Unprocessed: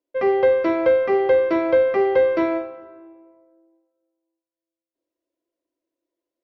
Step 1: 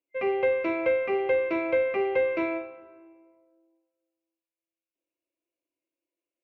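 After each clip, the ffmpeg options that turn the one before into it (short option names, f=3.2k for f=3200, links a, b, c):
-af "superequalizer=12b=3.55:14b=0.562,volume=-8dB"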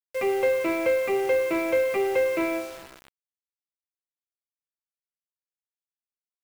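-filter_complex "[0:a]asplit=2[a][b];[b]asoftclip=type=hard:threshold=-31.5dB,volume=-5dB[c];[a][c]amix=inputs=2:normalize=0,acrusher=bits=6:mix=0:aa=0.000001"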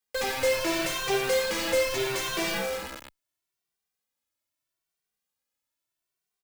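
-filter_complex "[0:a]asplit=2[a][b];[b]aeval=exprs='0.224*sin(PI/2*10*val(0)/0.224)':c=same,volume=-11dB[c];[a][c]amix=inputs=2:normalize=0,asplit=2[d][e];[e]adelay=2.1,afreqshift=0.77[f];[d][f]amix=inputs=2:normalize=1,volume=-1.5dB"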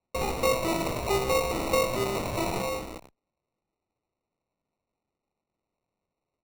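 -af "acrusher=samples=27:mix=1:aa=0.000001"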